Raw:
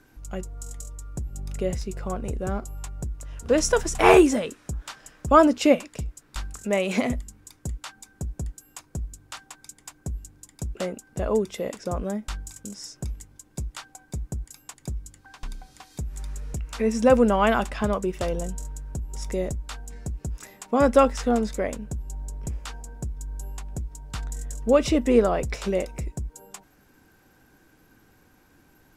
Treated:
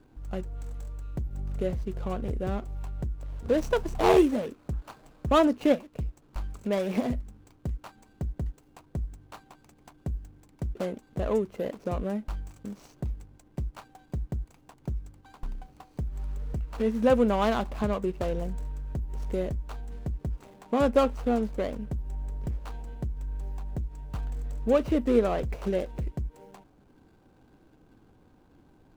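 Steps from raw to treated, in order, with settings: median filter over 25 samples; in parallel at +1 dB: compression, threshold -31 dBFS, peak gain reduction 18.5 dB; on the sum: trim -5.5 dB

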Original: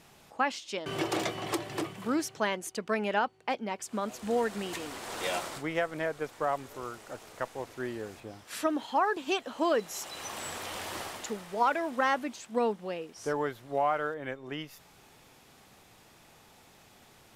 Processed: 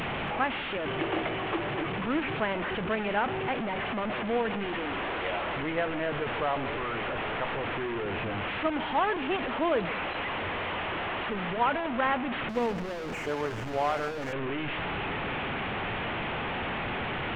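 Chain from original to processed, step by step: one-bit delta coder 16 kbps, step -26 dBFS; echo whose repeats swap between lows and highs 141 ms, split 960 Hz, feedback 52%, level -13 dB; 12.49–14.33 s: hysteresis with a dead band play -31 dBFS

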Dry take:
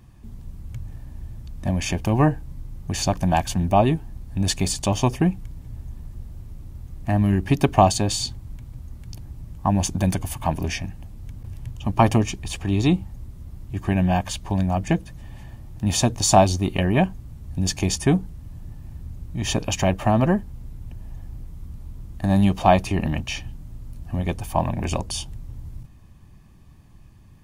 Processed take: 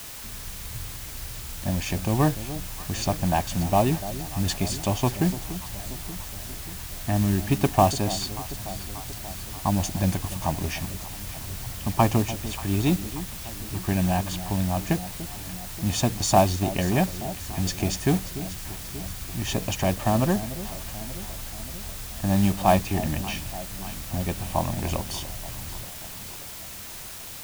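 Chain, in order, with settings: treble shelf 10 kHz -9 dB; modulation noise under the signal 19 dB; word length cut 6-bit, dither triangular; on a send: echo whose repeats swap between lows and highs 292 ms, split 810 Hz, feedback 78%, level -13 dB; on the sum: trim -3.5 dB

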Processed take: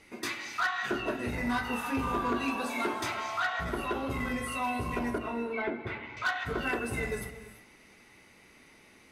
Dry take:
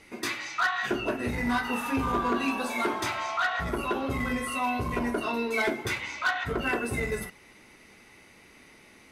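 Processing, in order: 5.18–6.17 s: distance through air 480 m; gated-style reverb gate 370 ms rising, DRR 11.5 dB; trim -3.5 dB

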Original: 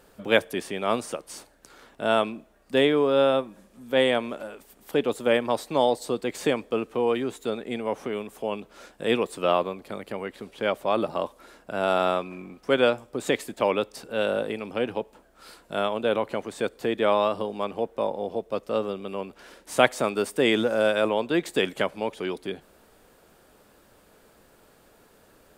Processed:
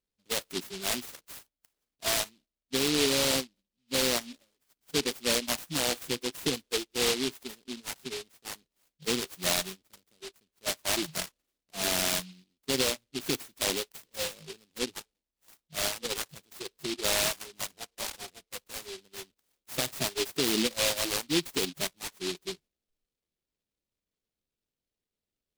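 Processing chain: spectral noise reduction 26 dB; gate -53 dBFS, range -7 dB; bass shelf 150 Hz +6.5 dB; peak limiter -15.5 dBFS, peak gain reduction 13 dB; delay time shaken by noise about 3.5 kHz, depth 0.32 ms; trim -2.5 dB

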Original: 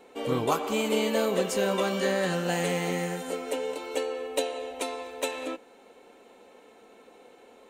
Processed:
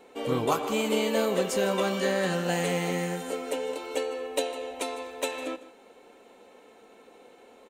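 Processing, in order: delay 155 ms -16.5 dB

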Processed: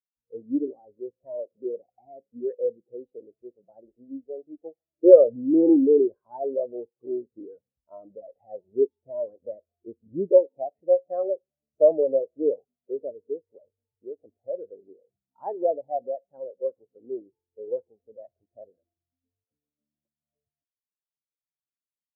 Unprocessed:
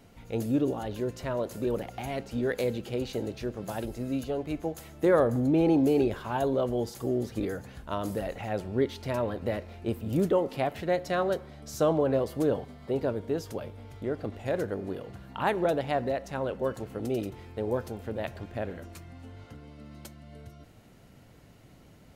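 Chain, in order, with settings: peaking EQ 560 Hz +10.5 dB 2.6 oct; spectral contrast expander 2.5:1; trim +2 dB

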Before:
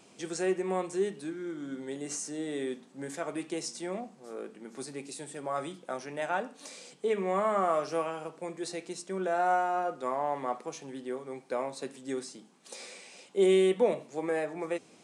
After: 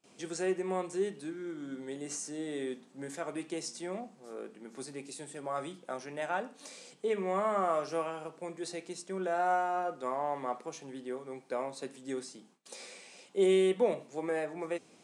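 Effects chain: gate with hold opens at -49 dBFS; trim -2.5 dB

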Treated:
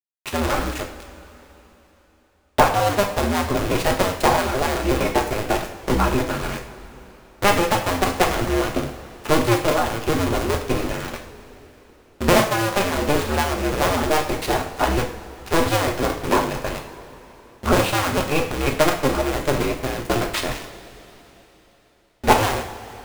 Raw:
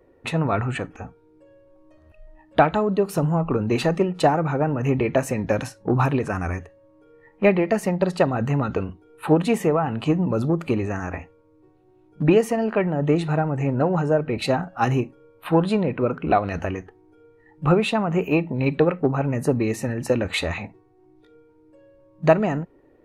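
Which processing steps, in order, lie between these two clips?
cycle switcher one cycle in 2, inverted; small samples zeroed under -25 dBFS; two-slope reverb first 0.48 s, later 3.8 s, from -18 dB, DRR 1.5 dB; trim -1 dB

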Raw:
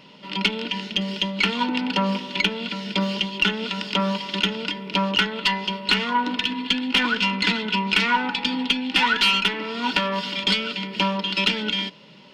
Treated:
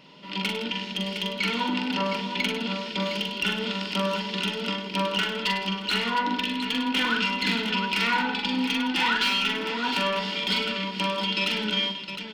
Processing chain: one-sided wavefolder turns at -10.5 dBFS; peak limiter -12.5 dBFS, peak gain reduction 6 dB; multi-tap echo 43/61/101/162/624/711 ms -3.5/-16.5/-9/-13.5/-19.5/-8 dB; trim -4 dB

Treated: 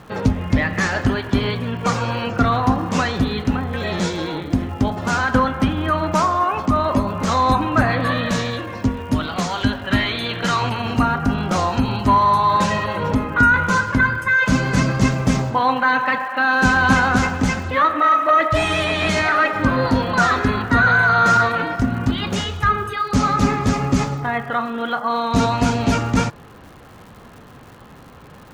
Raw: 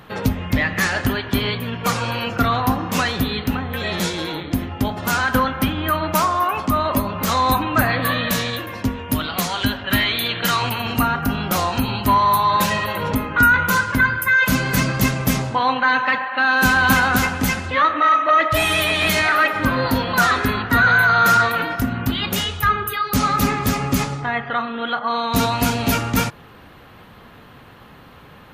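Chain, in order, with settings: low-pass 7.2 kHz 24 dB/octave; peaking EQ 3.3 kHz -6.5 dB 2.2 oct; crackle 230 per s -40 dBFS; trim +2.5 dB

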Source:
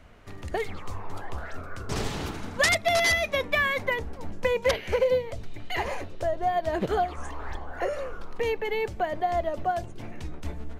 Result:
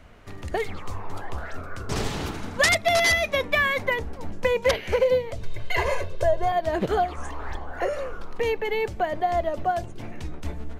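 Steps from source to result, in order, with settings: 5.42–6.52 s: comb 1.9 ms, depth 100%; trim +2.5 dB

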